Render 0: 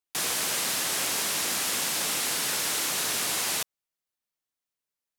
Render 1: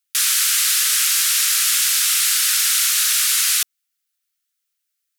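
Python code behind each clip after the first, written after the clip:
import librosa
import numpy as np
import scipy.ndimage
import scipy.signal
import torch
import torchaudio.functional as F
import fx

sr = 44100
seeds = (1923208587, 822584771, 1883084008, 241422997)

y = scipy.signal.sosfilt(scipy.signal.ellip(4, 1.0, 60, 1300.0, 'highpass', fs=sr, output='sos'), x)
y = fx.tilt_eq(y, sr, slope=2.0)
y = y * librosa.db_to_amplitude(6.5)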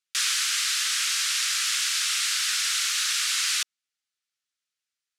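y = scipy.signal.sosfilt(scipy.signal.butter(2, 6400.0, 'lowpass', fs=sr, output='sos'), x)
y = fx.rider(y, sr, range_db=10, speed_s=0.5)
y = y * librosa.db_to_amplitude(-4.0)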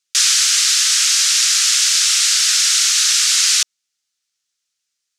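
y = fx.peak_eq(x, sr, hz=6200.0, db=10.0, octaves=1.5)
y = fx.notch(y, sr, hz=660.0, q=12.0)
y = y * librosa.db_to_amplitude(4.0)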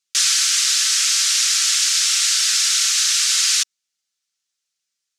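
y = x + 0.34 * np.pad(x, (int(5.2 * sr / 1000.0), 0))[:len(x)]
y = y * librosa.db_to_amplitude(-3.5)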